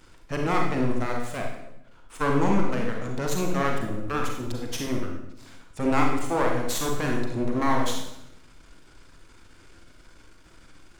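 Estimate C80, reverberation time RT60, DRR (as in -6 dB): 6.5 dB, 0.85 s, 0.5 dB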